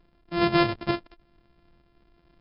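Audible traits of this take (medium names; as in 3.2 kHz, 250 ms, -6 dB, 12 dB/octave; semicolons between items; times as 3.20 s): a buzz of ramps at a fixed pitch in blocks of 128 samples; tremolo saw up 1.1 Hz, depth 40%; MP3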